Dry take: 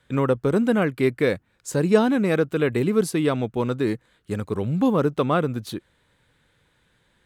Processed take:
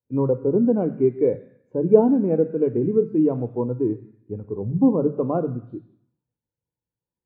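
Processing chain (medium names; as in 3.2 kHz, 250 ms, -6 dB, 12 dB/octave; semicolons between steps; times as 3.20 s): low-pass 3.3 kHz 12 dB/octave; reverberation RT60 1.1 s, pre-delay 3 ms, DRR 8.5 dB; spectral contrast expander 1.5:1; trim -12 dB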